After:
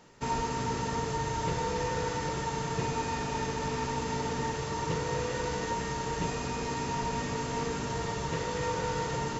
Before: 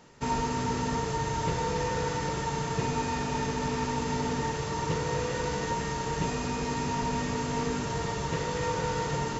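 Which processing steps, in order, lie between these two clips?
mains-hum notches 50/100/150/200/250 Hz
level −1.5 dB

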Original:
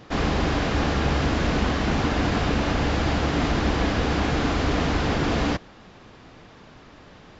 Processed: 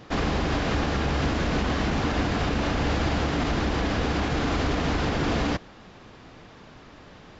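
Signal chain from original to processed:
brickwall limiter −16 dBFS, peak gain reduction 5.5 dB

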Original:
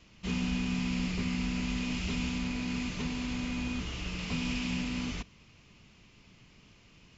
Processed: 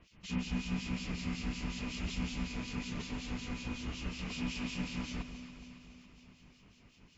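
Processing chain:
two-band tremolo in antiphase 5.4 Hz, depth 100%, crossover 2,400 Hz
delay that swaps between a low-pass and a high-pass 139 ms, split 920 Hz, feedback 77%, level −9 dB

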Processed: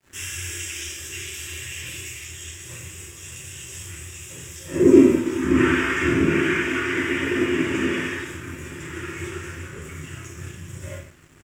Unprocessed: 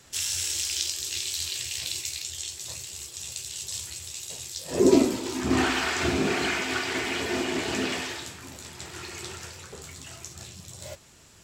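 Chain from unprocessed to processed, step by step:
phaser with its sweep stopped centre 1,800 Hz, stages 4
repeating echo 867 ms, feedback 57%, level −23.5 dB
in parallel at −0.5 dB: downward compressor, threshold −41 dBFS, peak gain reduction 23 dB
on the sum: reverb whose tail is shaped and stops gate 220 ms falling, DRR −7.5 dB
dead-zone distortion −45 dBFS
high-shelf EQ 4,100 Hz −11 dB
level −1 dB

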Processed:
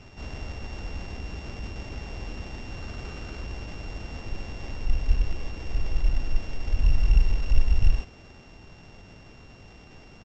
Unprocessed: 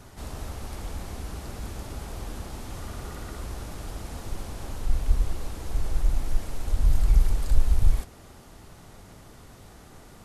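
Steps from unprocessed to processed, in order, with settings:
samples sorted by size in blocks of 16 samples
downsampling to 16,000 Hz

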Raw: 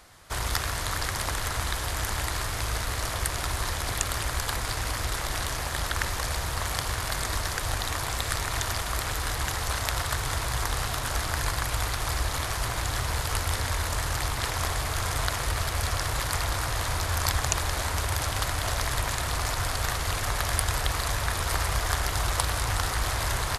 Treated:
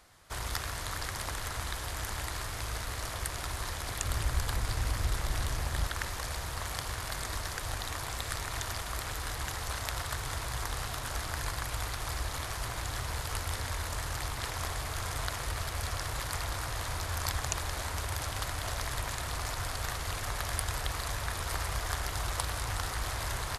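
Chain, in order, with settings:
0:04.04–0:05.87: low-shelf EQ 230 Hz +9 dB
level −7 dB

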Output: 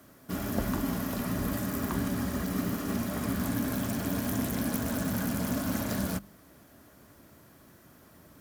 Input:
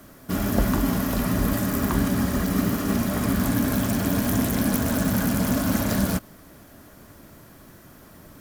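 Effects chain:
high-pass filter 50 Hz
mains-hum notches 50/100/150/200 Hz
level −7.5 dB

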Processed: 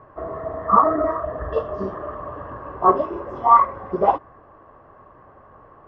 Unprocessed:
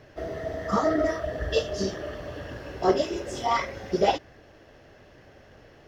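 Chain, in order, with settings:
low-pass with resonance 1,100 Hz, resonance Q 12

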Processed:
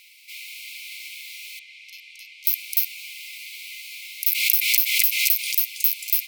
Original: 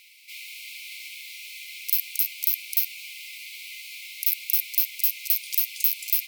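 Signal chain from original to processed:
0:01.59–0:02.45: head-to-tape spacing loss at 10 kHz 24 dB
0:04.31–0:05.55: background raised ahead of every attack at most 48 dB per second
level +2 dB

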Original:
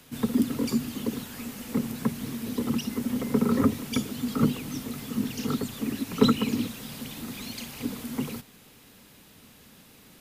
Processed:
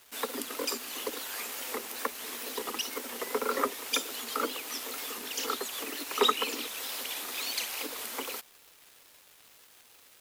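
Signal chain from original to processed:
tape wow and flutter 84 cents
in parallel at −2 dB: downward compressor, threshold −34 dBFS, peak gain reduction 19.5 dB
on the sum: Bessel high-pass filter 620 Hz, order 8
dead-zone distortion −49.5 dBFS
level +3.5 dB

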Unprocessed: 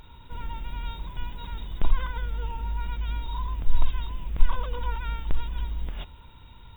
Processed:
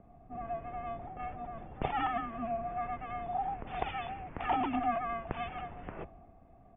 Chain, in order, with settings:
wavefolder on the positive side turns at −12 dBFS
low-pass that shuts in the quiet parts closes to 480 Hz, open at −15.5 dBFS
multiband delay without the direct sound highs, lows 160 ms, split 170 Hz
single-sideband voice off tune −230 Hz 200–2,900 Hz
level +6.5 dB

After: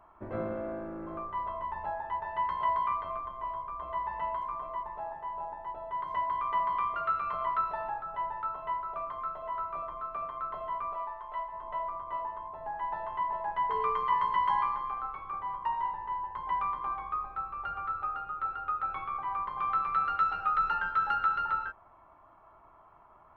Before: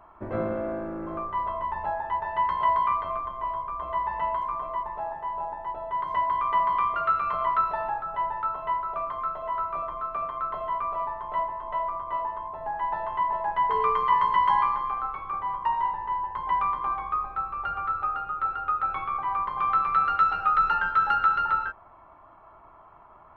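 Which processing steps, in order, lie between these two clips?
0:10.93–0:11.52: parametric band 71 Hz → 220 Hz −13 dB 3 octaves
level −6 dB

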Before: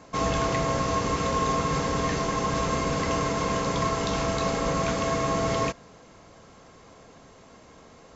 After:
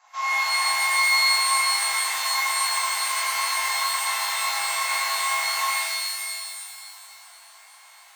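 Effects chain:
elliptic high-pass filter 790 Hz, stop band 70 dB
reverb with rising layers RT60 2.2 s, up +12 semitones, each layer −2 dB, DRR −9 dB
level −7.5 dB

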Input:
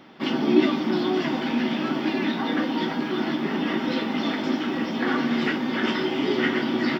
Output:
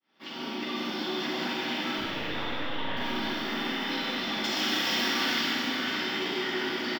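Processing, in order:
fade in at the beginning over 1.50 s
brickwall limiter −22 dBFS, peak gain reduction 10 dB
0:01.98–0:02.97: linear-prediction vocoder at 8 kHz pitch kept
spectral tilt +3 dB per octave
echo with shifted repeats 485 ms, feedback 46%, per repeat −42 Hz, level −14 dB
downward compressor 2.5 to 1, threshold −37 dBFS, peak gain reduction 7 dB
0:04.44–0:05.41: high-shelf EQ 2,400 Hz +11.5 dB
four-comb reverb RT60 2.8 s, combs from 33 ms, DRR −5 dB

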